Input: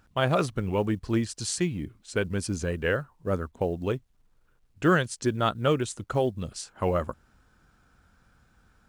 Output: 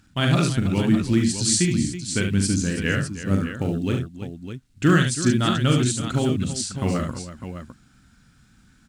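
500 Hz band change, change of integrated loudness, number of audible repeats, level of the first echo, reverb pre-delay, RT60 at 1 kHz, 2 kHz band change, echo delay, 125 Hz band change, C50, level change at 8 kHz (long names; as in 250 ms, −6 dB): −1.0 dB, +6.5 dB, 4, −6.0 dB, no reverb audible, no reverb audible, +4.5 dB, 41 ms, +9.0 dB, no reverb audible, +11.5 dB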